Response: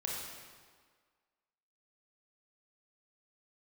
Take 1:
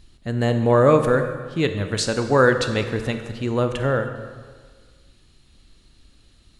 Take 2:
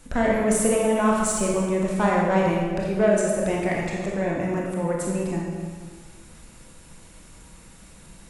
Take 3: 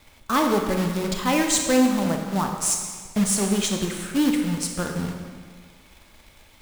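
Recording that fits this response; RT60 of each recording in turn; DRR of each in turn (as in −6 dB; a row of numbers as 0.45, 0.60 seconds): 2; 1.6, 1.7, 1.7 seconds; 7.0, −3.0, 2.5 decibels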